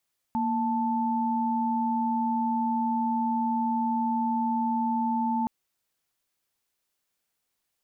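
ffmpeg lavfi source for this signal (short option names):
-f lavfi -i "aevalsrc='0.0473*(sin(2*PI*233.08*t)+sin(2*PI*880*t))':d=5.12:s=44100"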